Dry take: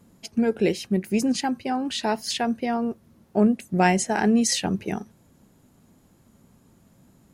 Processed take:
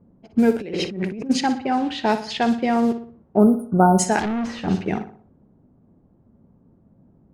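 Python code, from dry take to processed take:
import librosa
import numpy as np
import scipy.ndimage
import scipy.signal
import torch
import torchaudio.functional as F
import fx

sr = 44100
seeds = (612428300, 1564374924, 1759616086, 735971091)

p1 = fx.quant_dither(x, sr, seeds[0], bits=6, dither='none')
p2 = x + (p1 * librosa.db_to_amplitude(-7.5))
p3 = fx.spec_erase(p2, sr, start_s=3.37, length_s=0.62, low_hz=1500.0, high_hz=9000.0)
p4 = p3 + fx.echo_feedback(p3, sr, ms=60, feedback_pct=47, wet_db=-11, dry=0)
p5 = fx.over_compress(p4, sr, threshold_db=-29.0, ratio=-1.0, at=(0.6, 1.29), fade=0.02)
p6 = fx.clip_hard(p5, sr, threshold_db=-24.0, at=(4.19, 4.68))
p7 = fx.env_lowpass(p6, sr, base_hz=650.0, full_db=-14.5)
y = p7 * librosa.db_to_amplitude(1.5)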